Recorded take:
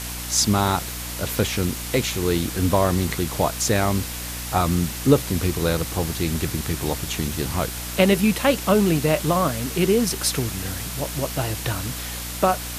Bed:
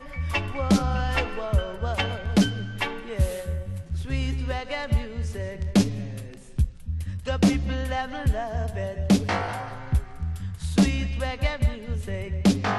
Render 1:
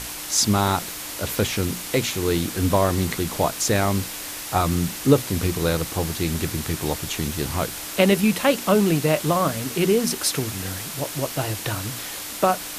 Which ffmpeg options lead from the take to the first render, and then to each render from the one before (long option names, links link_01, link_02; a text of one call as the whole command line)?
ffmpeg -i in.wav -af "bandreject=frequency=60:width_type=h:width=6,bandreject=frequency=120:width_type=h:width=6,bandreject=frequency=180:width_type=h:width=6,bandreject=frequency=240:width_type=h:width=6" out.wav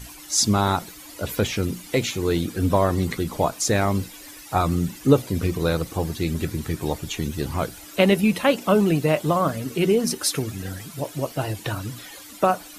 ffmpeg -i in.wav -af "afftdn=noise_reduction=14:noise_floor=-33" out.wav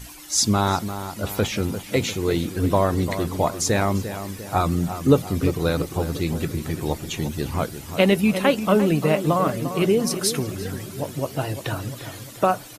ffmpeg -i in.wav -filter_complex "[0:a]asplit=2[link_01][link_02];[link_02]adelay=348,lowpass=frequency=2000:poles=1,volume=-10dB,asplit=2[link_03][link_04];[link_04]adelay=348,lowpass=frequency=2000:poles=1,volume=0.52,asplit=2[link_05][link_06];[link_06]adelay=348,lowpass=frequency=2000:poles=1,volume=0.52,asplit=2[link_07][link_08];[link_08]adelay=348,lowpass=frequency=2000:poles=1,volume=0.52,asplit=2[link_09][link_10];[link_10]adelay=348,lowpass=frequency=2000:poles=1,volume=0.52,asplit=2[link_11][link_12];[link_12]adelay=348,lowpass=frequency=2000:poles=1,volume=0.52[link_13];[link_01][link_03][link_05][link_07][link_09][link_11][link_13]amix=inputs=7:normalize=0" out.wav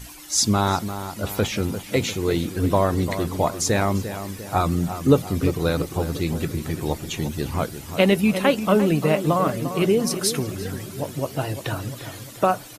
ffmpeg -i in.wav -af anull out.wav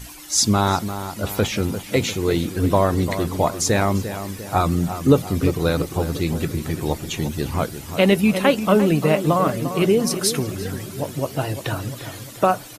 ffmpeg -i in.wav -af "volume=2dB,alimiter=limit=-3dB:level=0:latency=1" out.wav